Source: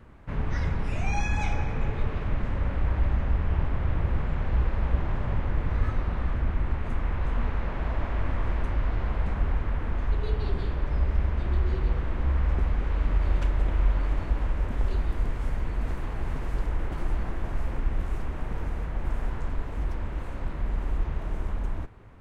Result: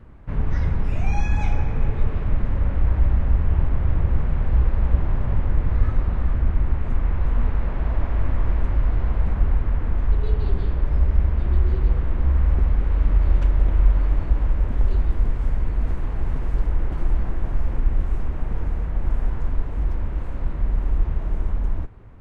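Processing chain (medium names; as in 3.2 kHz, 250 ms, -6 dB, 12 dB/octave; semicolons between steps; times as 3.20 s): tilt EQ -1.5 dB/octave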